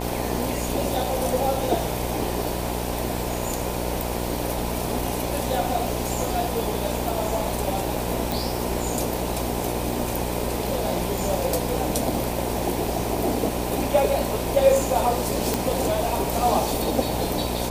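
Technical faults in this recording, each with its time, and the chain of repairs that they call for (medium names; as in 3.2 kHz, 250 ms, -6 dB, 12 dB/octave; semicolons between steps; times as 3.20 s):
buzz 60 Hz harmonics 17 -29 dBFS
8.32 s: pop
15.54 s: pop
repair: de-click; de-hum 60 Hz, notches 17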